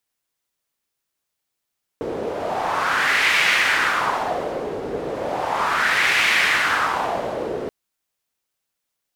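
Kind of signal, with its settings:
wind from filtered noise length 5.68 s, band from 420 Hz, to 2,200 Hz, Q 2.7, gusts 2, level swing 10 dB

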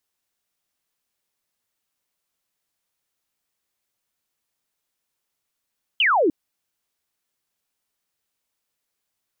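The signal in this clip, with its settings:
single falling chirp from 3,200 Hz, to 280 Hz, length 0.30 s sine, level −15 dB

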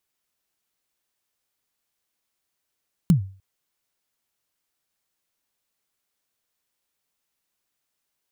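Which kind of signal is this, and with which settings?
synth kick length 0.30 s, from 190 Hz, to 96 Hz, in 112 ms, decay 0.40 s, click on, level −9 dB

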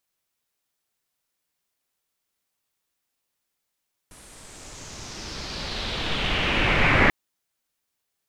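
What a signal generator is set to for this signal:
filter sweep on noise pink, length 2.99 s lowpass, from 10,000 Hz, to 2,000 Hz, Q 3.1, exponential, gain ramp +32 dB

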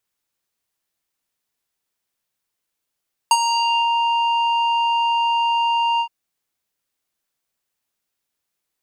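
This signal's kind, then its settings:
subtractive voice square A#5 12 dB per octave, low-pass 2,300 Hz, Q 2.3, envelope 2 octaves, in 0.55 s, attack 2.7 ms, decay 0.05 s, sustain −9 dB, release 0.08 s, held 2.69 s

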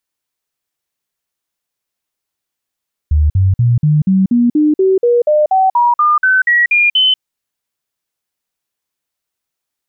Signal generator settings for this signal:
stepped sweep 75.5 Hz up, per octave 3, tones 17, 0.19 s, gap 0.05 s −7.5 dBFS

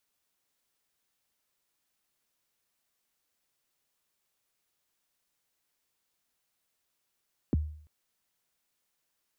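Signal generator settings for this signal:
synth kick length 0.34 s, from 390 Hz, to 76 Hz, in 20 ms, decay 0.56 s, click off, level −20.5 dB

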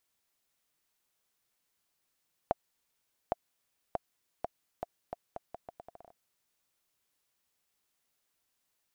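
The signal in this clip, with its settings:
bouncing ball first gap 0.81 s, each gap 0.78, 694 Hz, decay 24 ms −14 dBFS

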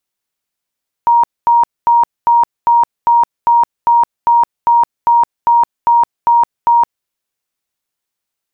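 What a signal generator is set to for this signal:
tone bursts 942 Hz, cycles 156, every 0.40 s, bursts 15, −6 dBFS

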